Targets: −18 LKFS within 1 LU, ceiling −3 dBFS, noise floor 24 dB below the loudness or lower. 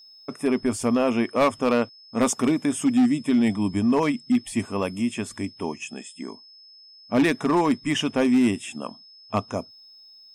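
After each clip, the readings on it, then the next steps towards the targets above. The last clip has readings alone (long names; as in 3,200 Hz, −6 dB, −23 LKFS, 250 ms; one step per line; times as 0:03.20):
share of clipped samples 1.4%; peaks flattened at −14.0 dBFS; interfering tone 5,200 Hz; level of the tone −47 dBFS; integrated loudness −23.5 LKFS; sample peak −14.0 dBFS; target loudness −18.0 LKFS
→ clipped peaks rebuilt −14 dBFS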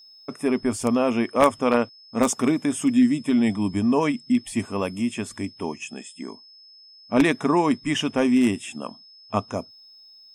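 share of clipped samples 0.0%; interfering tone 5,200 Hz; level of the tone −47 dBFS
→ notch filter 5,200 Hz, Q 30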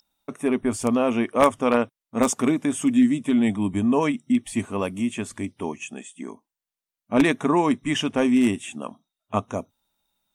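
interfering tone none found; integrated loudness −23.0 LKFS; sample peak −5.0 dBFS; target loudness −18.0 LKFS
→ level +5 dB
brickwall limiter −3 dBFS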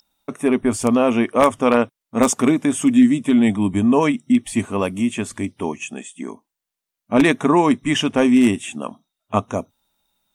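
integrated loudness −18.0 LKFS; sample peak −3.0 dBFS; background noise floor −84 dBFS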